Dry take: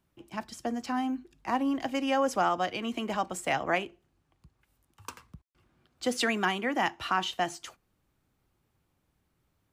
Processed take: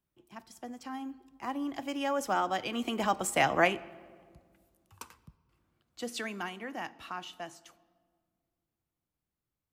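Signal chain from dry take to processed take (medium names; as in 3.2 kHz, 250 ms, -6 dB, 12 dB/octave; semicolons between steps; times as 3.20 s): Doppler pass-by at 3.50 s, 12 m/s, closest 7.8 m; treble shelf 11 kHz +9 dB; on a send: reverberation RT60 1.8 s, pre-delay 4 ms, DRR 17.5 dB; on the sum: trim +3 dB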